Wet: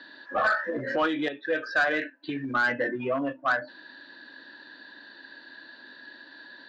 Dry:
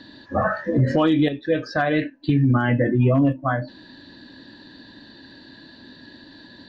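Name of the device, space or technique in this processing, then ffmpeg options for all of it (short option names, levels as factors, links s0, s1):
intercom: -af "highpass=460,lowpass=4400,equalizer=f=1500:t=o:w=0.53:g=10,asoftclip=type=tanh:threshold=0.211,volume=0.708"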